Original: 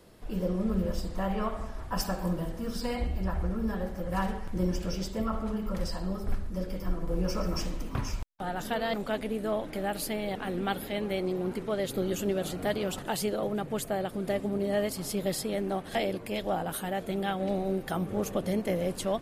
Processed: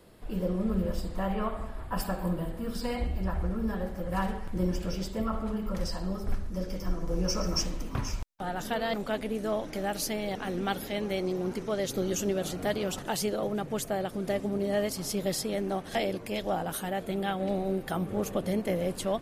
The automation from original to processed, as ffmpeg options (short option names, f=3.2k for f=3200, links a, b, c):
-af "asetnsamples=n=441:p=0,asendcmd='1.34 equalizer g -14;2.75 equalizer g -3;5.75 equalizer g 4;6.64 equalizer g 11.5;7.63 equalizer g 3.5;9.35 equalizer g 12.5;12.29 equalizer g 6.5;16.89 equalizer g -1',equalizer=f=5.9k:t=o:w=0.39:g=-5.5"